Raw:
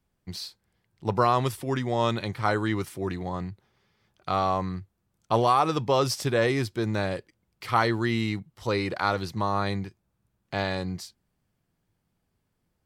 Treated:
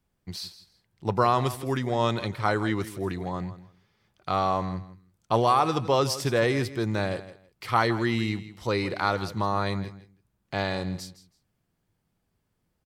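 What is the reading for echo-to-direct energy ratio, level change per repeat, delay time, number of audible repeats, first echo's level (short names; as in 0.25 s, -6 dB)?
-15.0 dB, -14.0 dB, 0.162 s, 2, -15.0 dB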